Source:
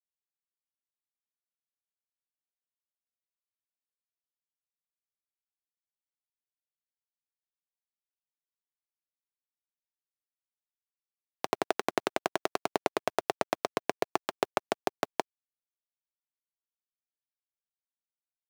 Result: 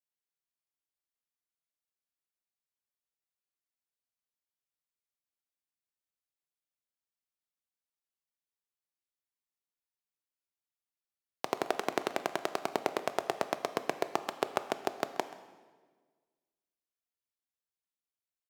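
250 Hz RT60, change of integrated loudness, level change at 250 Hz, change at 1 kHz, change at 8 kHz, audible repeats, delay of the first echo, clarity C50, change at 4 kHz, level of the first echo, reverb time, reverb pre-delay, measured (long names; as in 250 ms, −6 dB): 1.7 s, −2.0 dB, −2.0 dB, −2.0 dB, −2.0 dB, 1, 131 ms, 12.0 dB, −2.0 dB, −18.5 dB, 1.5 s, 14 ms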